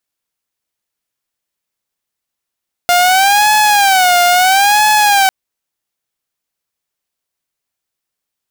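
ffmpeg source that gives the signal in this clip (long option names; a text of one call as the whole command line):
ffmpeg -f lavfi -i "aevalsrc='0.562*(2*mod((778.5*t-73.5/(2*PI*0.75)*sin(2*PI*0.75*t)),1)-1)':duration=2.4:sample_rate=44100" out.wav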